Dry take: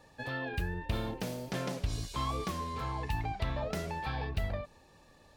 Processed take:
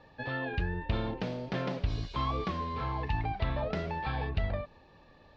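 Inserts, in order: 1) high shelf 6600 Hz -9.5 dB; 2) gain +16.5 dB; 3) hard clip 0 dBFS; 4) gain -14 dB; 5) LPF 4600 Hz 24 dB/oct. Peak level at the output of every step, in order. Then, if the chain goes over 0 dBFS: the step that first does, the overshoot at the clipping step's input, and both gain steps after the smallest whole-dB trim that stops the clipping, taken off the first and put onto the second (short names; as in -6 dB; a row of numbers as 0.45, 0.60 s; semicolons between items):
-21.0, -4.5, -4.5, -18.5, -18.5 dBFS; no overload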